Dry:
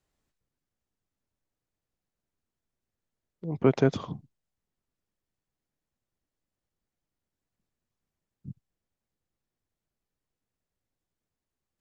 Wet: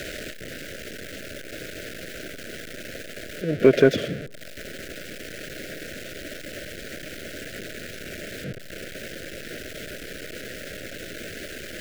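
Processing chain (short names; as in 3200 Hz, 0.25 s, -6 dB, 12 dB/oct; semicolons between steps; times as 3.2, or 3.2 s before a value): zero-crossing step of -33 dBFS; elliptic band-stop 620–1500 Hz, stop band 70 dB; tone controls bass -14 dB, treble -13 dB; in parallel at -3 dB: soft clip -22 dBFS, distortion -11 dB; on the sum: tape echo 0.152 s, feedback 42%, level -22 dB, low-pass 1100 Hz; gain +8 dB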